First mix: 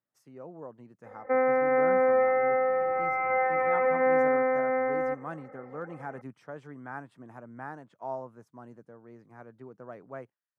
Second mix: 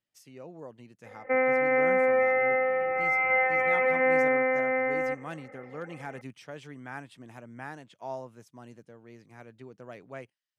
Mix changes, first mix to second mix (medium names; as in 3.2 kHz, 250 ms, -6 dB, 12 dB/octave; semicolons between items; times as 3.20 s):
speech: remove high-pass 100 Hz; master: add resonant high shelf 1.9 kHz +12 dB, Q 1.5